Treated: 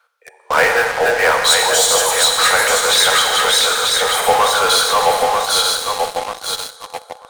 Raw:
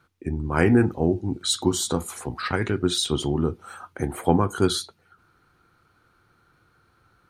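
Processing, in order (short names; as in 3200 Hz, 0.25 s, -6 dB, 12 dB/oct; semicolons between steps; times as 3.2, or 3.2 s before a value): regenerating reverse delay 0.469 s, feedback 62%, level -2 dB; steep high-pass 470 Hz 96 dB/oct; Schroeder reverb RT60 1.9 s, combs from 33 ms, DRR 6 dB; dynamic EQ 1900 Hz, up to +3 dB, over -37 dBFS, Q 1.3; in parallel at -7 dB: fuzz box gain 35 dB, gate -38 dBFS; on the sum: gain +4.5 dB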